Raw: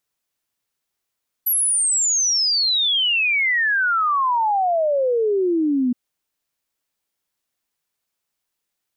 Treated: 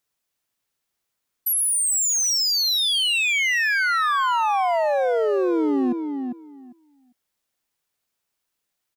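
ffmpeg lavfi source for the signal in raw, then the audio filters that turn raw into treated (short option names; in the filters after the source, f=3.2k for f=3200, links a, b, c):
-f lavfi -i "aevalsrc='0.158*clip(min(t,4.47-t)/0.01,0,1)*sin(2*PI*12000*4.47/log(240/12000)*(exp(log(240/12000)*t/4.47)-1))':d=4.47:s=44100"
-filter_complex "[0:a]volume=20dB,asoftclip=hard,volume=-20dB,asplit=2[a][b];[b]adelay=399,lowpass=f=2.5k:p=1,volume=-6dB,asplit=2[c][d];[d]adelay=399,lowpass=f=2.5k:p=1,volume=0.17,asplit=2[e][f];[f]adelay=399,lowpass=f=2.5k:p=1,volume=0.17[g];[c][e][g]amix=inputs=3:normalize=0[h];[a][h]amix=inputs=2:normalize=0"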